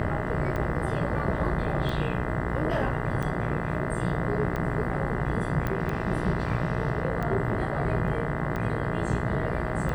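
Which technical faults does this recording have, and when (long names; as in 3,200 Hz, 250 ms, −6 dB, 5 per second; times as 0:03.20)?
mains buzz 60 Hz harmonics 34 −32 dBFS
scratch tick 45 rpm −20 dBFS
0:05.67: click −17 dBFS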